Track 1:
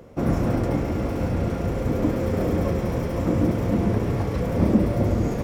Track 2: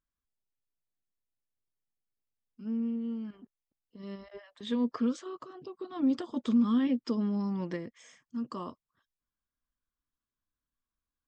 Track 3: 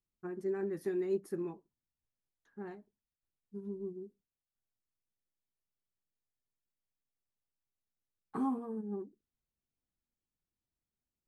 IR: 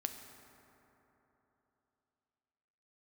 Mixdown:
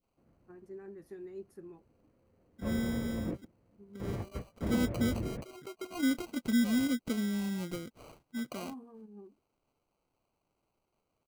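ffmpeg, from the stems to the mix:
-filter_complex "[0:a]lowpass=f=2600:w=0.5412,lowpass=f=2600:w=1.3066,volume=5.31,asoftclip=hard,volume=0.188,volume=0.224[s0];[1:a]aemphasis=mode=production:type=50fm,acrusher=samples=25:mix=1:aa=0.000001,volume=0.841,asplit=2[s1][s2];[2:a]adelay=250,volume=0.266[s3];[s2]apad=whole_len=239883[s4];[s0][s4]sidechaingate=range=0.0224:threshold=0.00447:ratio=16:detection=peak[s5];[s5][s1][s3]amix=inputs=3:normalize=0,adynamicequalizer=threshold=0.00355:dfrequency=1100:dqfactor=0.72:tfrequency=1100:tqfactor=0.72:attack=5:release=100:ratio=0.375:range=3:mode=cutabove:tftype=bell"

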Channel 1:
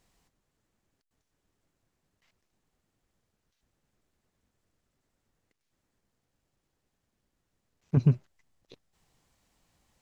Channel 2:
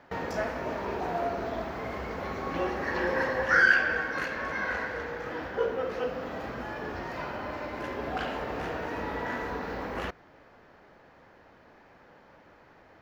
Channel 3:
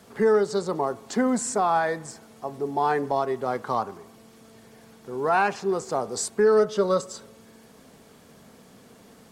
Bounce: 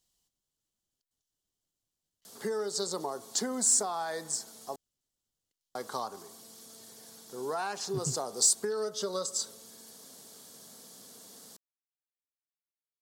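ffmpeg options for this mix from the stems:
-filter_complex "[0:a]equalizer=f=3000:t=o:w=0.31:g=9.5,volume=0.178[s0];[2:a]highpass=f=280:p=1,acompressor=threshold=0.0501:ratio=6,adelay=2250,volume=0.596,asplit=3[s1][s2][s3];[s1]atrim=end=4.76,asetpts=PTS-STARTPTS,afade=t=out:st=4.756:d=0.004:c=hsin[s4];[s2]atrim=start=4.76:end=5.75,asetpts=PTS-STARTPTS,volume=0[s5];[s3]atrim=start=5.75,asetpts=PTS-STARTPTS,afade=t=in:d=0.004:c=hsin[s6];[s4][s5][s6]concat=n=3:v=0:a=1[s7];[s0][s7]amix=inputs=2:normalize=0,aexciter=amount=3.7:drive=9.6:freq=3600,highshelf=f=3600:g=-7.5"

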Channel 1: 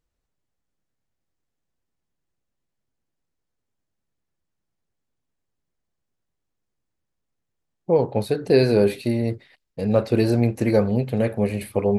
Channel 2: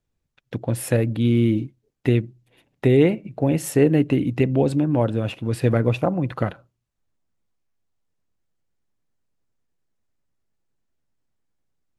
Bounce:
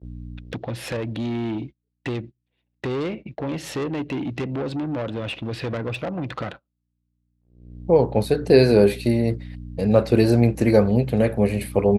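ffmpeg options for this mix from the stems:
-filter_complex "[0:a]aeval=exprs='val(0)+0.0178*(sin(2*PI*60*n/s)+sin(2*PI*2*60*n/s)/2+sin(2*PI*3*60*n/s)/3+sin(2*PI*4*60*n/s)/4+sin(2*PI*5*60*n/s)/5)':c=same,volume=1.33[s0];[1:a]firequalizer=gain_entry='entry(110,0);entry(330,4);entry(3800,10);entry(8600,-10)':delay=0.05:min_phase=1,acompressor=threshold=0.0501:ratio=2,asoftclip=type=tanh:threshold=0.0596,volume=1.26,asplit=2[s1][s2];[s2]apad=whole_len=528546[s3];[s0][s3]sidechaincompress=threshold=0.00398:ratio=6:attack=40:release=990[s4];[s4][s1]amix=inputs=2:normalize=0,highpass=55,agate=range=0.0447:threshold=0.0158:ratio=16:detection=peak"

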